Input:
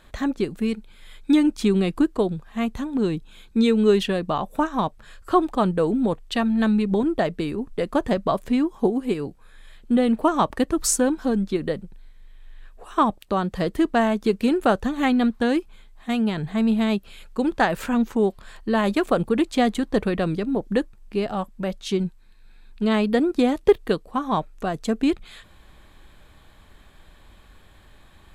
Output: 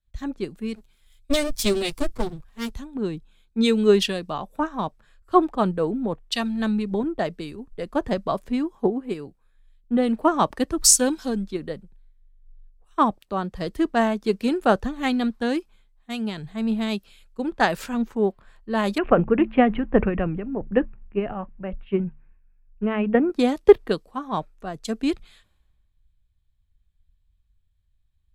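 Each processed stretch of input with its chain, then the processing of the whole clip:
0:00.75–0:02.71: lower of the sound and its delayed copy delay 8 ms + high-shelf EQ 6,300 Hz +9 dB
0:18.98–0:23.30: transient designer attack +4 dB, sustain +8 dB + Chebyshev low-pass filter 2,800 Hz, order 5 + hum removal 73.44 Hz, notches 3
whole clip: dynamic equaliser 5,200 Hz, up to +5 dB, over −52 dBFS, Q 2.6; multiband upward and downward expander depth 100%; level −3 dB

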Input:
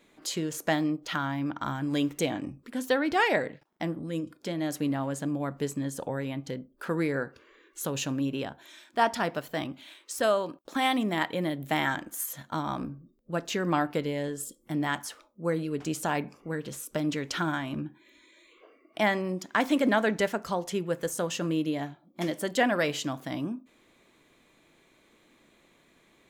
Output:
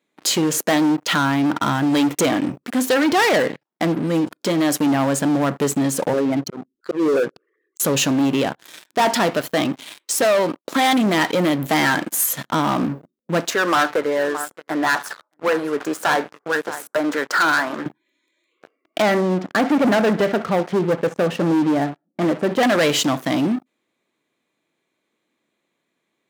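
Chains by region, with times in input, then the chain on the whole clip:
0:06.13–0:07.80: spectral envelope exaggerated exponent 3 + volume swells 184 ms
0:13.50–0:17.86: high-pass filter 480 Hz + high shelf with overshoot 2,100 Hz −10 dB, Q 3 + single-tap delay 620 ms −19 dB
0:19.02–0:22.63: low-pass filter 1,500 Hz + parametric band 1,000 Hz −12.5 dB 0.21 octaves + repeating echo 65 ms, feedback 38%, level −20 dB
whole clip: leveller curve on the samples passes 5; high-pass filter 150 Hz 12 dB per octave; level −2 dB

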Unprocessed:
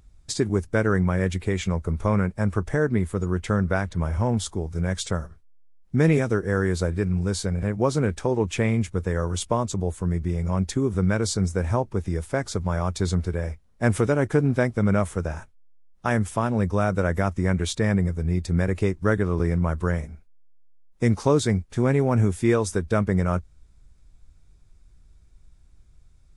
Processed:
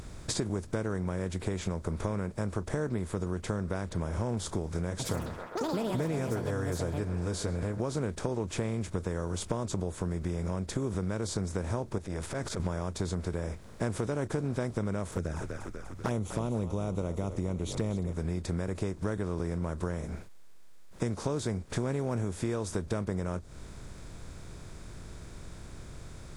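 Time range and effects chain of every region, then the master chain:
0:04.90–0:07.80: notch comb filter 190 Hz + delay with pitch and tempo change per echo 95 ms, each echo +6 semitones, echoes 3, each echo −6 dB + feedback echo with a band-pass in the loop 133 ms, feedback 76%, band-pass 1,000 Hz, level −18.5 dB
0:11.98–0:12.60: downward compressor 10 to 1, threshold −31 dBFS + saturating transformer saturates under 250 Hz
0:15.11–0:18.13: low-shelf EQ 170 Hz +3 dB + flanger swept by the level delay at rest 8.4 ms, full sweep at −19.5 dBFS + echo with shifted repeats 245 ms, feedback 47%, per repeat −61 Hz, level −17.5 dB
whole clip: compressor on every frequency bin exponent 0.6; dynamic equaliser 2,000 Hz, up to −5 dB, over −36 dBFS, Q 0.93; downward compressor 6 to 1, threshold −25 dBFS; level −3.5 dB

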